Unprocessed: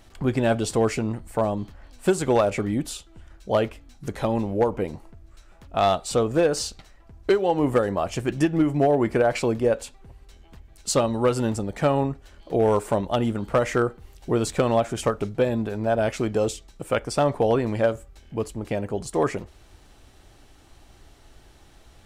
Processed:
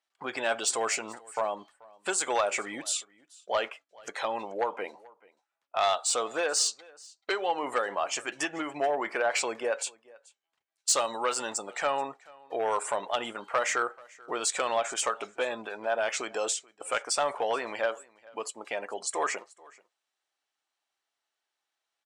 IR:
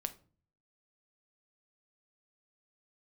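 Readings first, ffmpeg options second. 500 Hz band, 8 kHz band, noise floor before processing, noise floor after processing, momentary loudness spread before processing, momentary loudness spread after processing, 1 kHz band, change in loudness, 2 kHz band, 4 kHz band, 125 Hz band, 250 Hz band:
-9.0 dB, +5.0 dB, -53 dBFS, under -85 dBFS, 11 LU, 11 LU, -2.5 dB, -6.0 dB, +1.0 dB, +1.5 dB, -31.0 dB, -18.0 dB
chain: -filter_complex "[0:a]lowpass=9900,agate=range=0.178:threshold=0.00891:ratio=16:detection=peak,highpass=930,afftdn=nr=16:nf=-49,adynamicequalizer=threshold=0.00316:dfrequency=7500:dqfactor=1.4:tfrequency=7500:tqfactor=1.4:attack=5:release=100:ratio=0.375:range=3.5:mode=boostabove:tftype=bell,asplit=2[s0][s1];[s1]alimiter=level_in=2.51:limit=0.0631:level=0:latency=1,volume=0.398,volume=0.891[s2];[s0][s2]amix=inputs=2:normalize=0,asoftclip=type=tanh:threshold=0.178,aecho=1:1:434:0.0631"

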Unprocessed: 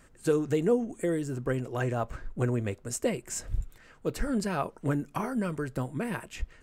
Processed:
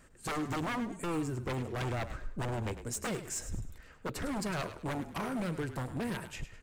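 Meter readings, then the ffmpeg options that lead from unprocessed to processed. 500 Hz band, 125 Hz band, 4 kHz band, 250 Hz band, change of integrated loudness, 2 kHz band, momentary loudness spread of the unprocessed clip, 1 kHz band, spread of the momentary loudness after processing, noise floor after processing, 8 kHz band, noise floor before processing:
-9.5 dB, -5.0 dB, +1.5 dB, -6.0 dB, -5.5 dB, -1.5 dB, 10 LU, -1.5 dB, 6 LU, -56 dBFS, -2.5 dB, -57 dBFS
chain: -filter_complex "[0:a]aeval=exprs='0.0422*(abs(mod(val(0)/0.0422+3,4)-2)-1)':c=same,asplit=2[s0][s1];[s1]asplit=3[s2][s3][s4];[s2]adelay=103,afreqshift=-36,volume=0.266[s5];[s3]adelay=206,afreqshift=-72,volume=0.0881[s6];[s4]adelay=309,afreqshift=-108,volume=0.0288[s7];[s5][s6][s7]amix=inputs=3:normalize=0[s8];[s0][s8]amix=inputs=2:normalize=0,volume=0.794"

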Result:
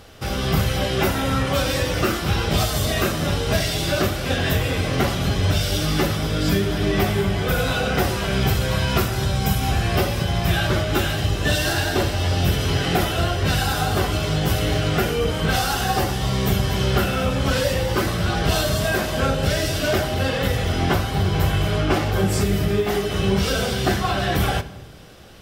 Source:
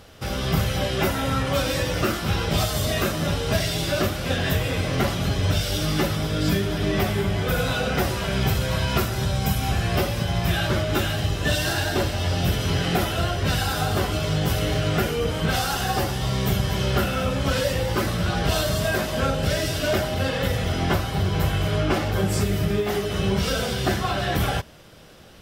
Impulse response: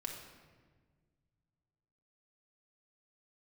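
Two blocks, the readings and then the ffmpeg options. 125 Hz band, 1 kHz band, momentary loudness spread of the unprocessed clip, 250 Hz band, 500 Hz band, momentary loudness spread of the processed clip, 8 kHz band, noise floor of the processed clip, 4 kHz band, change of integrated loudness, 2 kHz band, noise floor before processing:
+2.0 dB, +2.5 dB, 2 LU, +2.5 dB, +2.5 dB, 2 LU, +2.5 dB, -26 dBFS, +2.5 dB, +2.5 dB, +2.5 dB, -29 dBFS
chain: -filter_complex "[0:a]asplit=2[s0][s1];[1:a]atrim=start_sample=2205,asetrate=70560,aresample=44100[s2];[s1][s2]afir=irnorm=-1:irlink=0,volume=0.75[s3];[s0][s3]amix=inputs=2:normalize=0"

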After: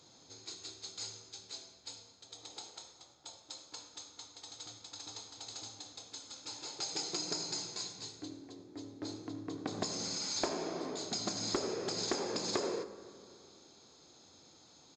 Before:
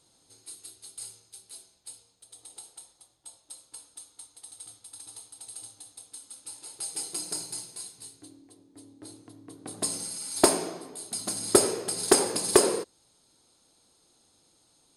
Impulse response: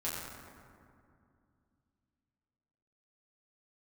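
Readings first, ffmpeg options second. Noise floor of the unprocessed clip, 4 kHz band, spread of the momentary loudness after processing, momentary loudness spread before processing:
-66 dBFS, -2.5 dB, 20 LU, 23 LU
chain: -filter_complex "[0:a]highpass=71,bandreject=f=60:t=h:w=6,bandreject=f=120:t=h:w=6,aresample=16000,asoftclip=type=hard:threshold=0.15,aresample=44100,bandreject=f=2900:w=13,acompressor=threshold=0.01:ratio=6,asplit=2[s0][s1];[1:a]atrim=start_sample=2205,adelay=74[s2];[s1][s2]afir=irnorm=-1:irlink=0,volume=0.158[s3];[s0][s3]amix=inputs=2:normalize=0,volume=2"

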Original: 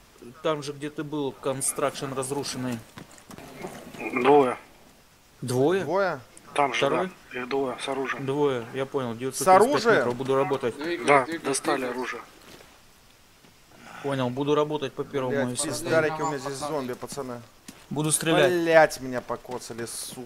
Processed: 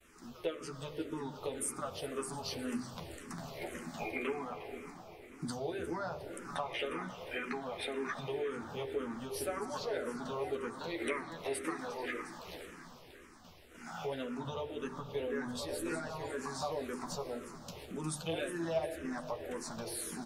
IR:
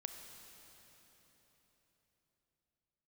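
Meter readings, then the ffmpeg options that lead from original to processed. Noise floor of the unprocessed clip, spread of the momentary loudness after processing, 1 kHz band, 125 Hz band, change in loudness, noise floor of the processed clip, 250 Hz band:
-55 dBFS, 10 LU, -16.0 dB, -12.5 dB, -14.0 dB, -55 dBFS, -11.5 dB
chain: -filter_complex "[0:a]bandreject=f=50:t=h:w=6,bandreject=f=100:t=h:w=6,bandreject=f=150:t=h:w=6,bandreject=f=200:t=h:w=6,bandreject=f=250:t=h:w=6,bandreject=f=300:t=h:w=6,bandreject=f=350:t=h:w=6,bandreject=f=400:t=h:w=6,agate=range=0.0224:threshold=0.00316:ratio=3:detection=peak,acompressor=threshold=0.02:ratio=5,asplit=7[s0][s1][s2][s3][s4][s5][s6];[s1]adelay=356,afreqshift=-41,volume=0.211[s7];[s2]adelay=712,afreqshift=-82,volume=0.12[s8];[s3]adelay=1068,afreqshift=-123,volume=0.0684[s9];[s4]adelay=1424,afreqshift=-164,volume=0.0394[s10];[s5]adelay=1780,afreqshift=-205,volume=0.0224[s11];[s6]adelay=2136,afreqshift=-246,volume=0.0127[s12];[s0][s7][s8][s9][s10][s11][s12]amix=inputs=7:normalize=0,asplit=2[s13][s14];[1:a]atrim=start_sample=2205,lowpass=4800,adelay=12[s15];[s14][s15]afir=irnorm=-1:irlink=0,volume=1.19[s16];[s13][s16]amix=inputs=2:normalize=0,asplit=2[s17][s18];[s18]afreqshift=-1.9[s19];[s17][s19]amix=inputs=2:normalize=1,volume=0.841"

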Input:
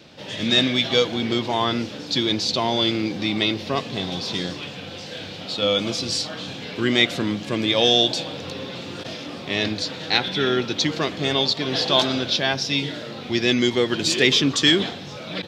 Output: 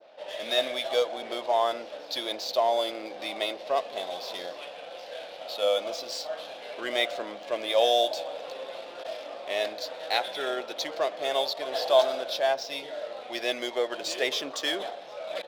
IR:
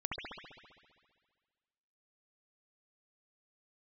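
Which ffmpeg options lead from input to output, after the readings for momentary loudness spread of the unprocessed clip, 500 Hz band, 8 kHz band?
16 LU, -2.0 dB, -10.0 dB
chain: -af "adynamicequalizer=threshold=0.0251:dfrequency=2900:dqfactor=0.77:tfrequency=2900:tqfactor=0.77:attack=5:release=100:ratio=0.375:range=2.5:mode=cutabove:tftype=bell,highpass=f=620:t=q:w=4.9,adynamicsmooth=sensitivity=6.5:basefreq=3200,volume=0.376"

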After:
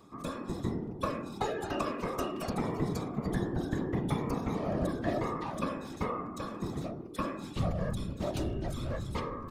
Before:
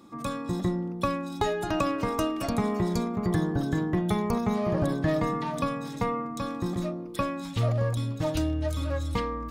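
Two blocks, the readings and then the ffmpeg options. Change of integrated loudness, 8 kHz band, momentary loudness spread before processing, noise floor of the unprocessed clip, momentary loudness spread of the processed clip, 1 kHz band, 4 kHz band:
-6.0 dB, -6.0 dB, 5 LU, -37 dBFS, 5 LU, -5.5 dB, -6.0 dB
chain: -af "aresample=32000,aresample=44100,afftfilt=real='hypot(re,im)*cos(2*PI*random(0))':imag='hypot(re,im)*sin(2*PI*random(1))':win_size=512:overlap=0.75,areverse,acompressor=mode=upward:threshold=0.0112:ratio=2.5,areverse"

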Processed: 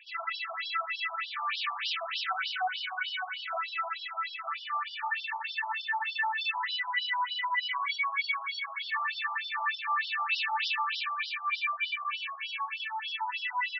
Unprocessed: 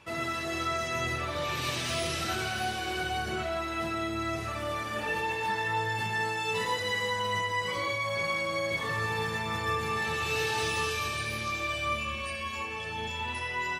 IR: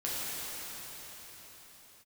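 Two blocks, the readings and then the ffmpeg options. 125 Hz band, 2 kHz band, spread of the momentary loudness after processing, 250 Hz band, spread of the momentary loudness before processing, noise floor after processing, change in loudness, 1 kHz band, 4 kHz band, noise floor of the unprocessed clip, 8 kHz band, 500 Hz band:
under -40 dB, 0.0 dB, 5 LU, under -40 dB, 4 LU, -43 dBFS, -1.0 dB, 0.0 dB, +1.0 dB, -36 dBFS, under -20 dB, -16.0 dB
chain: -af "afftfilt=real='re*between(b*sr/1024,910*pow(4100/910,0.5+0.5*sin(2*PI*3.3*pts/sr))/1.41,910*pow(4100/910,0.5+0.5*sin(2*PI*3.3*pts/sr))*1.41)':imag='im*between(b*sr/1024,910*pow(4100/910,0.5+0.5*sin(2*PI*3.3*pts/sr))/1.41,910*pow(4100/910,0.5+0.5*sin(2*PI*3.3*pts/sr))*1.41)':win_size=1024:overlap=0.75,volume=1.78"

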